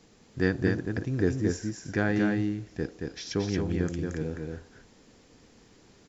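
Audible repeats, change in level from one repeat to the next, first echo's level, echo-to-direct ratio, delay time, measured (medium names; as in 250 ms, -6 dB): 1, no regular repeats, -3.5 dB, -3.5 dB, 226 ms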